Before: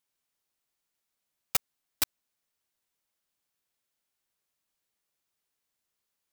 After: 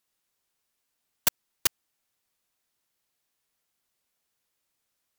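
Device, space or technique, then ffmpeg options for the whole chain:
nightcore: -af "asetrate=53802,aresample=44100,volume=5dB"

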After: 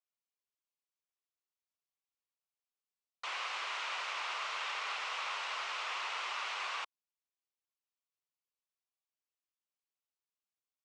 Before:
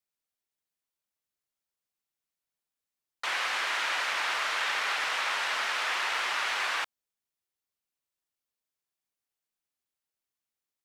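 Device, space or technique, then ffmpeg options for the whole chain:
phone speaker on a table: -af "highpass=frequency=350:width=0.5412,highpass=frequency=350:width=1.3066,equalizer=frequency=1100:width_type=q:width=4:gain=5,equalizer=frequency=1700:width_type=q:width=4:gain=-6,equalizer=frequency=2700:width_type=q:width=4:gain=3,lowpass=frequency=7700:width=0.5412,lowpass=frequency=7700:width=1.3066,volume=-9dB"

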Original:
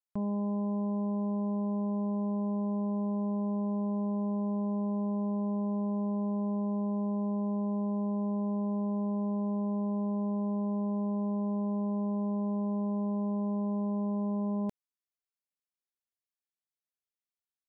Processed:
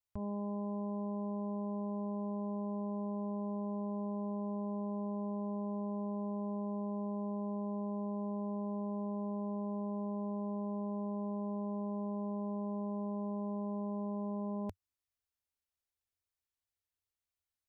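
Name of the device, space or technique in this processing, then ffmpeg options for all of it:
car stereo with a boomy subwoofer: -af "lowshelf=frequency=120:width_type=q:width=3:gain=9,alimiter=level_in=7.5dB:limit=-24dB:level=0:latency=1:release=160,volume=-7.5dB"

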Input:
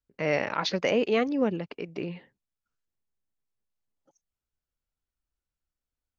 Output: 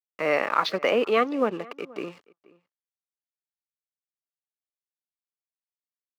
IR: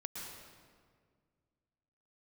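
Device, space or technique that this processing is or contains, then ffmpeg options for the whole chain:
pocket radio on a weak battery: -filter_complex "[0:a]highpass=300,lowpass=4100,aeval=exprs='sgn(val(0))*max(abs(val(0))-0.00335,0)':channel_layout=same,highpass=92,equalizer=frequency=1200:width_type=o:width=0.28:gain=11.5,asplit=2[link_01][link_02];[link_02]adelay=478.1,volume=-23dB,highshelf=frequency=4000:gain=-10.8[link_03];[link_01][link_03]amix=inputs=2:normalize=0,volume=3.5dB"

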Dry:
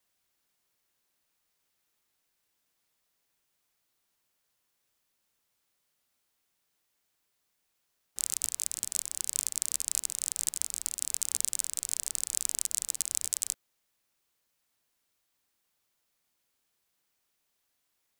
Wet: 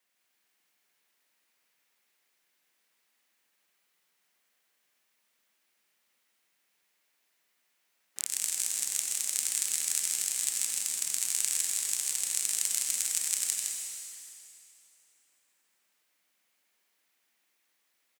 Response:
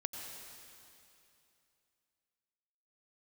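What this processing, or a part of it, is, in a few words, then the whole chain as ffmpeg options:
stadium PA: -filter_complex "[0:a]highpass=frequency=170:width=0.5412,highpass=frequency=170:width=1.3066,equalizer=frequency=2100:width_type=o:width=1:gain=7,aecho=1:1:160.3|209.9:0.708|0.282[link_01];[1:a]atrim=start_sample=2205[link_02];[link_01][link_02]afir=irnorm=-1:irlink=0"

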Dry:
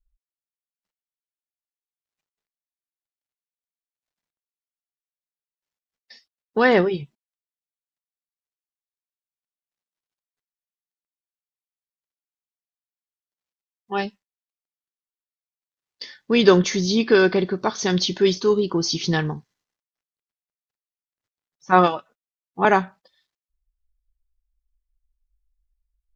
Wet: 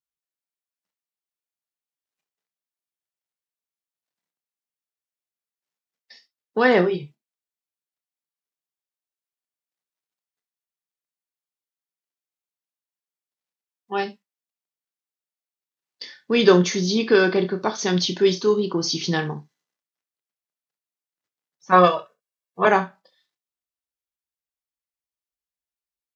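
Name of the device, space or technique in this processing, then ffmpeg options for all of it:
low shelf boost with a cut just above: -filter_complex "[0:a]highpass=frequency=150:width=0.5412,highpass=frequency=150:width=1.3066,lowshelf=frequency=89:gain=7.5,equalizer=frequency=210:width_type=o:width=0.77:gain=-2,asettb=1/sr,asplit=3[link_01][link_02][link_03];[link_01]atrim=end=21.724[link_04];[link_02]atrim=start=21.72:end=22.67,asetpts=PTS-STARTPTS,afade=type=in:duration=0.004:curve=qsin,afade=type=out:start_time=0.946:duration=0.004:curve=qsin,aecho=1:1:1.8:0.88,atrim=end_sample=41895[link_05];[link_03]atrim=start=22.666[link_06];[link_04][link_05]acrossfade=duration=0.004:curve1=hsin:curve2=qsin[link_07];[link_07][link_06]acrossfade=duration=0.004:curve1=qsin:curve2=hsin,aecho=1:1:28|68:0.335|0.15,volume=-1dB"

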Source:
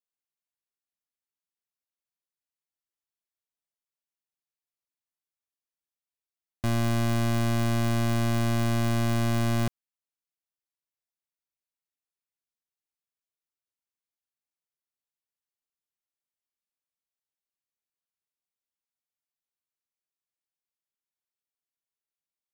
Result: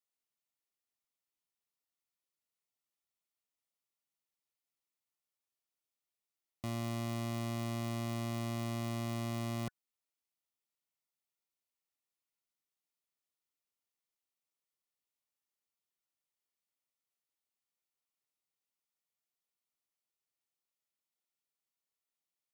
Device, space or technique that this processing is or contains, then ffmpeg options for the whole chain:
PA system with an anti-feedback notch: -af "highpass=frequency=100:poles=1,asuperstop=centerf=1600:order=12:qfactor=6.7,alimiter=level_in=5dB:limit=-24dB:level=0:latency=1:release=37,volume=-5dB"

